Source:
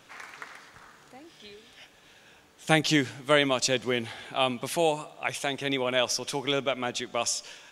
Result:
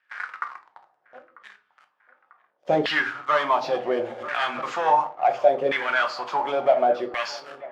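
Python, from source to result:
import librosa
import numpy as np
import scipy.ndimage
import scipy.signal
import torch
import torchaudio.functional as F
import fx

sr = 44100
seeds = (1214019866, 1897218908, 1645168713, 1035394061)

p1 = fx.freq_compress(x, sr, knee_hz=3200.0, ratio=1.5)
p2 = fx.leveller(p1, sr, passes=5)
p3 = 10.0 ** (-21.0 / 20.0) * (np.abs((p2 / 10.0 ** (-21.0 / 20.0) + 3.0) % 4.0 - 2.0) - 1.0)
p4 = p2 + (p3 * librosa.db_to_amplitude(-6.0))
p5 = fx.room_shoebox(p4, sr, seeds[0], volume_m3=290.0, walls='furnished', distance_m=0.96)
p6 = fx.filter_lfo_bandpass(p5, sr, shape='saw_down', hz=0.7, low_hz=480.0, high_hz=1800.0, q=5.8)
p7 = fx.echo_wet_lowpass(p6, sr, ms=944, feedback_pct=62, hz=2100.0, wet_db=-20)
p8 = fx.pre_swell(p7, sr, db_per_s=59.0, at=(4.05, 4.61), fade=0.02)
y = p8 * librosa.db_to_amplitude(1.5)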